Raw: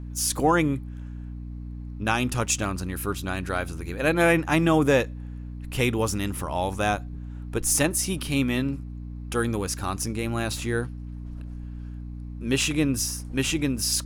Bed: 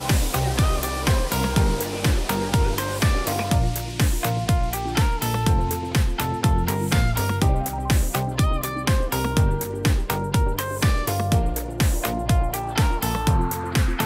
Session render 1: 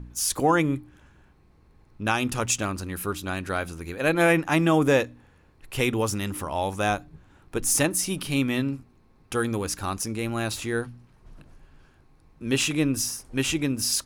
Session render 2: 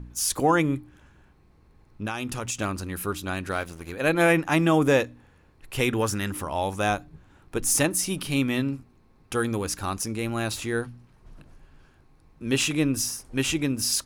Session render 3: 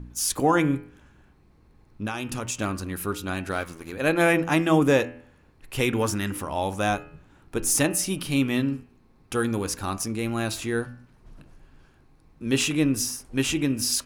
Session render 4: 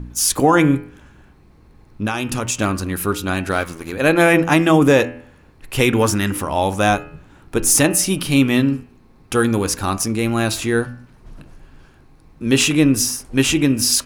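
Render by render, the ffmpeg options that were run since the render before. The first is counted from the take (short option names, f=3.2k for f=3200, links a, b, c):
-af "bandreject=f=60:t=h:w=4,bandreject=f=120:t=h:w=4,bandreject=f=180:t=h:w=4,bandreject=f=240:t=h:w=4,bandreject=f=300:t=h:w=4"
-filter_complex "[0:a]asettb=1/sr,asplit=3[a][b][c];[a]atrim=end=2.054[d];[b]atrim=start=2.05:end=2.59,asetpts=PTS-STARTPTS,afade=t=in:d=0.004:c=qsin,afade=t=out:st=0.536:d=0.004:c=qsin,acompressor=threshold=-28dB:ratio=3:attack=3.2:release=140:knee=1:detection=peak[e];[c]atrim=start=2.586[f];[d][e]acrossfade=d=0.004:c1=hsin:c2=qsin[g];[g][f]acrossfade=d=0.004:c1=qsin:c2=hsin,asettb=1/sr,asplit=3[h][i][j];[h]atrim=end=3.514[k];[i]atrim=start=3.51:end=3.92,asetpts=PTS-STARTPTS,afade=t=in:d=0.004:c=qsin,afade=t=out:st=0.406:d=0.004:c=qsin,aeval=exprs='sgn(val(0))*max(abs(val(0))-0.00708,0)':c=same[l];[j]atrim=start=3.916[m];[k][l]acrossfade=d=0.004:c1=hsin:c2=qsin[n];[n][m]acrossfade=d=0.004:c1=qsin:c2=hsin,asettb=1/sr,asplit=3[o][p][q];[o]atrim=end=5.894[r];[p]atrim=start=5.89:end=6.32,asetpts=PTS-STARTPTS,afade=t=in:d=0.004:c=qsin,afade=t=out:st=0.426:d=0.004:c=qsin,equalizer=f=1.6k:w=3.5:g=10[s];[q]atrim=start=6.316[t];[r][s]acrossfade=d=0.004:c1=hsin:c2=qsin[u];[u][t]acrossfade=d=0.004:c1=qsin:c2=hsin"
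-af "equalizer=f=250:t=o:w=0.93:g=2.5,bandreject=f=83.35:t=h:w=4,bandreject=f=166.7:t=h:w=4,bandreject=f=250.05:t=h:w=4,bandreject=f=333.4:t=h:w=4,bandreject=f=416.75:t=h:w=4,bandreject=f=500.1:t=h:w=4,bandreject=f=583.45:t=h:w=4,bandreject=f=666.8:t=h:w=4,bandreject=f=750.15:t=h:w=4,bandreject=f=833.5:t=h:w=4,bandreject=f=916.85:t=h:w=4,bandreject=f=1.0002k:t=h:w=4,bandreject=f=1.08355k:t=h:w=4,bandreject=f=1.1669k:t=h:w=4,bandreject=f=1.25025k:t=h:w=4,bandreject=f=1.3336k:t=h:w=4,bandreject=f=1.41695k:t=h:w=4,bandreject=f=1.5003k:t=h:w=4,bandreject=f=1.58365k:t=h:w=4,bandreject=f=1.667k:t=h:w=4,bandreject=f=1.75035k:t=h:w=4,bandreject=f=1.8337k:t=h:w=4,bandreject=f=1.91705k:t=h:w=4,bandreject=f=2.0004k:t=h:w=4,bandreject=f=2.08375k:t=h:w=4,bandreject=f=2.1671k:t=h:w=4,bandreject=f=2.25045k:t=h:w=4,bandreject=f=2.3338k:t=h:w=4,bandreject=f=2.41715k:t=h:w=4,bandreject=f=2.5005k:t=h:w=4,bandreject=f=2.58385k:t=h:w=4,bandreject=f=2.6672k:t=h:w=4,bandreject=f=2.75055k:t=h:w=4,bandreject=f=2.8339k:t=h:w=4,bandreject=f=2.91725k:t=h:w=4,bandreject=f=3.0006k:t=h:w=4,bandreject=f=3.08395k:t=h:w=4,bandreject=f=3.1673k:t=h:w=4"
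-af "volume=8.5dB,alimiter=limit=-3dB:level=0:latency=1"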